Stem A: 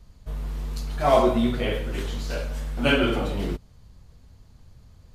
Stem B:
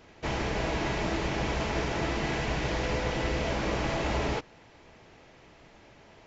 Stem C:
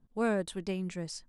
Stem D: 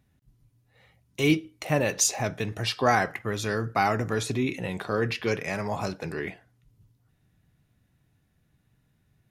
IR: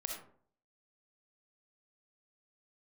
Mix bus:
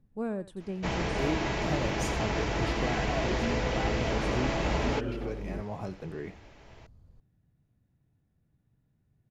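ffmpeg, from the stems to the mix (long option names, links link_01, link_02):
-filter_complex "[0:a]adelay=2050,volume=-13dB[link_01];[1:a]adelay=600,volume=-0.5dB[link_02];[2:a]volume=-7.5dB,asplit=2[link_03][link_04];[link_04]volume=-16.5dB[link_05];[3:a]asoftclip=type=tanh:threshold=-9.5dB,volume=-10dB,asplit=2[link_06][link_07];[link_07]volume=-20dB[link_08];[link_01][link_03][link_06]amix=inputs=3:normalize=0,tiltshelf=frequency=1100:gain=7,alimiter=limit=-23.5dB:level=0:latency=1:release=455,volume=0dB[link_09];[link_05][link_08]amix=inputs=2:normalize=0,aecho=0:1:88:1[link_10];[link_02][link_09][link_10]amix=inputs=3:normalize=0"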